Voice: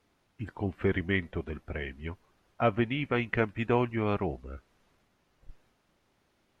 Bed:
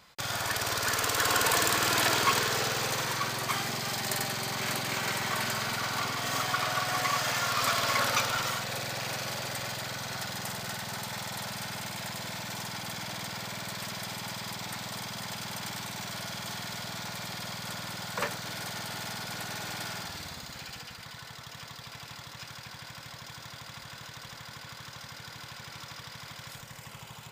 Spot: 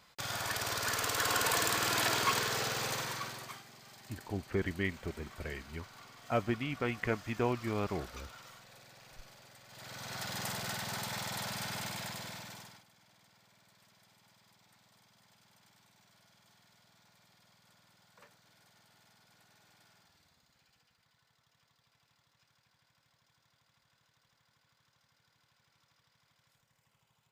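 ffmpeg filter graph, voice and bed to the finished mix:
-filter_complex "[0:a]adelay=3700,volume=-5.5dB[a];[1:a]volume=15.5dB,afade=t=out:st=2.92:d=0.71:silence=0.133352,afade=t=in:st=9.68:d=0.74:silence=0.0944061,afade=t=out:st=11.83:d=1.02:silence=0.0473151[b];[a][b]amix=inputs=2:normalize=0"

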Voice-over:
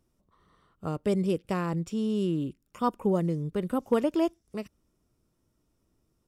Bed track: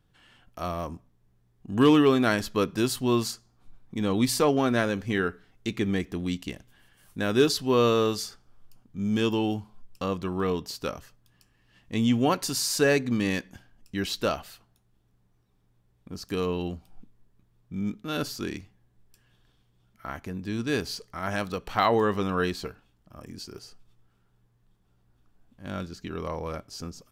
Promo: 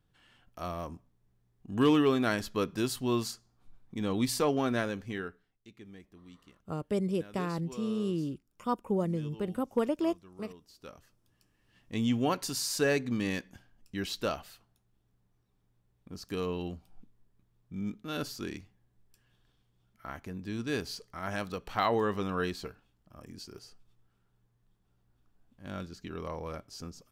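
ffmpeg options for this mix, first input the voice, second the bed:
-filter_complex "[0:a]adelay=5850,volume=-4dB[a];[1:a]volume=12.5dB,afade=t=out:st=4.72:d=0.88:silence=0.125893,afade=t=in:st=10.67:d=1.11:silence=0.125893[b];[a][b]amix=inputs=2:normalize=0"

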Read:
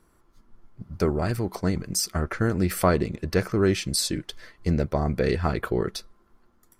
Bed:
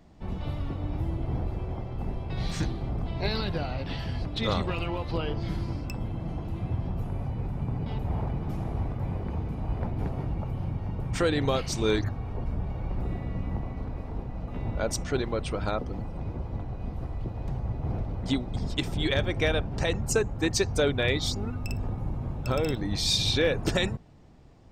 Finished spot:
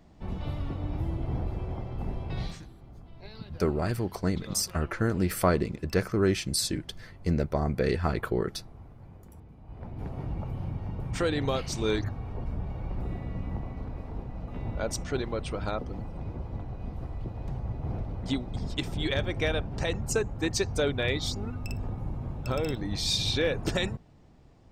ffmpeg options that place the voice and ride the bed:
-filter_complex "[0:a]adelay=2600,volume=-3dB[a];[1:a]volume=14.5dB,afade=t=out:st=2.37:d=0.24:silence=0.141254,afade=t=in:st=9.65:d=0.68:silence=0.16788[b];[a][b]amix=inputs=2:normalize=0"

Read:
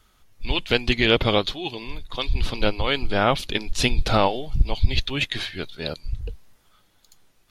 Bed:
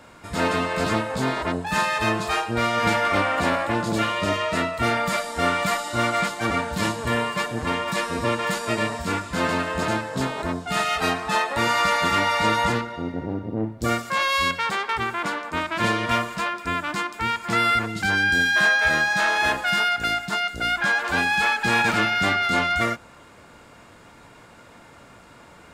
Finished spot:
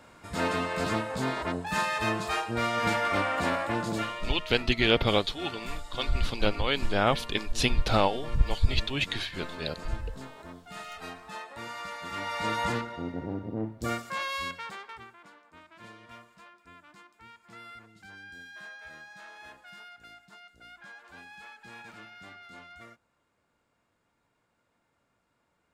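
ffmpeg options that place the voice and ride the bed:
-filter_complex "[0:a]adelay=3800,volume=-4.5dB[a];[1:a]volume=6.5dB,afade=t=out:st=3.86:d=0.47:silence=0.237137,afade=t=in:st=12.04:d=0.78:silence=0.237137,afade=t=out:st=13.48:d=1.69:silence=0.0891251[b];[a][b]amix=inputs=2:normalize=0"

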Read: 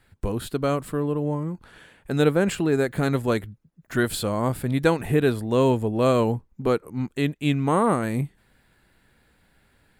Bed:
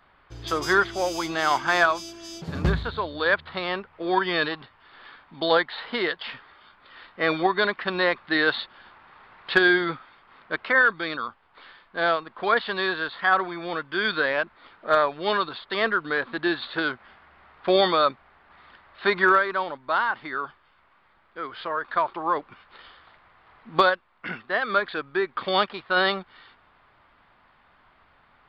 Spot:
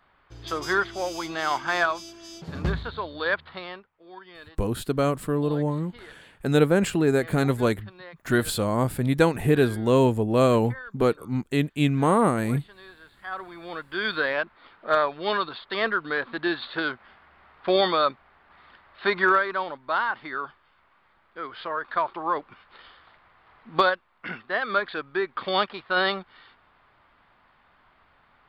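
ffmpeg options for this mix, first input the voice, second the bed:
-filter_complex "[0:a]adelay=4350,volume=0.5dB[a];[1:a]volume=17dB,afade=t=out:st=3.39:d=0.52:silence=0.11885,afade=t=in:st=13.16:d=1.01:silence=0.0944061[b];[a][b]amix=inputs=2:normalize=0"

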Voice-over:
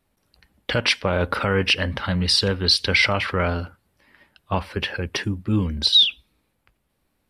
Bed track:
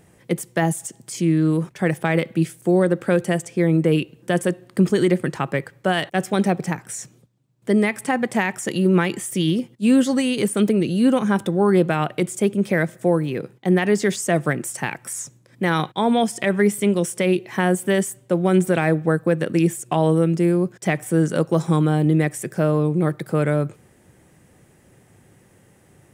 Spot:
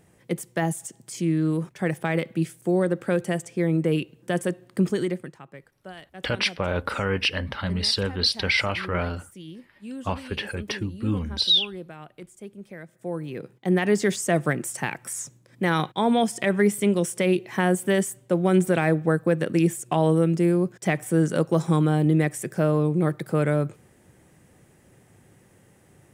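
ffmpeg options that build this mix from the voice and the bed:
-filter_complex "[0:a]adelay=5550,volume=-4.5dB[a];[1:a]volume=13.5dB,afade=t=out:st=4.85:d=0.52:silence=0.158489,afade=t=in:st=12.88:d=1.04:silence=0.11885[b];[a][b]amix=inputs=2:normalize=0"

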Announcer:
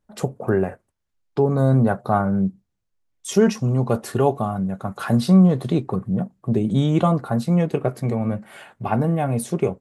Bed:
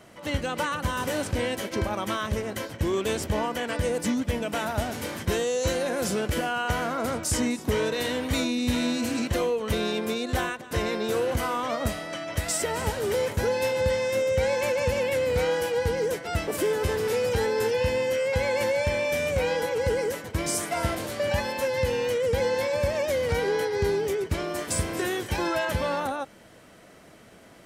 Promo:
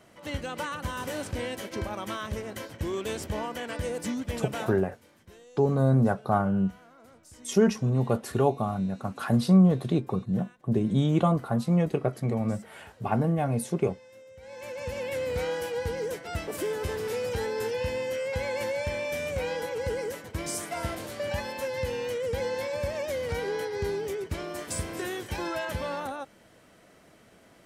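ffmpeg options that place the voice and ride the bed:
-filter_complex "[0:a]adelay=4200,volume=-5dB[a];[1:a]volume=15dB,afade=t=out:st=4.6:d=0.21:silence=0.0944061,afade=t=in:st=14.41:d=0.8:silence=0.0944061[b];[a][b]amix=inputs=2:normalize=0"

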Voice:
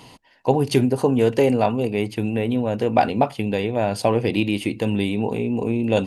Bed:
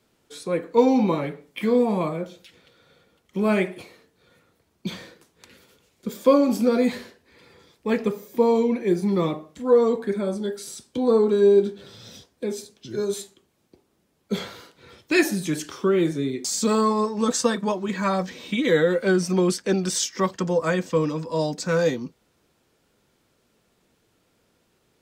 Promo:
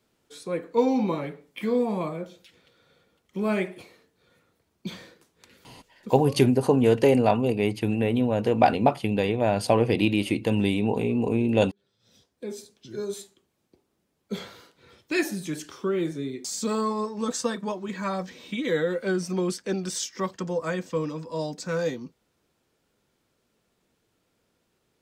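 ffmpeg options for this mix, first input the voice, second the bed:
-filter_complex "[0:a]adelay=5650,volume=-1.5dB[a];[1:a]volume=17.5dB,afade=t=out:st=5.87:d=0.46:silence=0.0668344,afade=t=in:st=11.99:d=0.56:silence=0.0794328[b];[a][b]amix=inputs=2:normalize=0"

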